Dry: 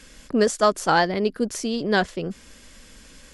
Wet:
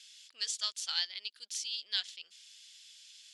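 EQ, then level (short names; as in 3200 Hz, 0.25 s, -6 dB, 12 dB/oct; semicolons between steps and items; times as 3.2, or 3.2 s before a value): ladder band-pass 4000 Hz, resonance 45%; high shelf 2900 Hz +10.5 dB; 0.0 dB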